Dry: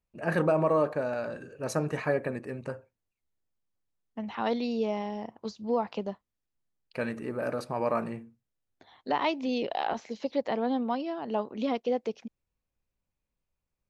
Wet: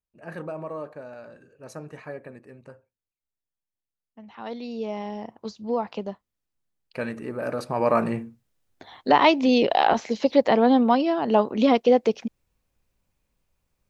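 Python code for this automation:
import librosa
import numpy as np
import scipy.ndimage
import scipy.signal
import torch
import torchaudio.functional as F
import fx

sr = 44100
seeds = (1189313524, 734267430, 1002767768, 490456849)

y = fx.gain(x, sr, db=fx.line((4.23, -9.5), (5.1, 2.0), (7.42, 2.0), (8.22, 11.0)))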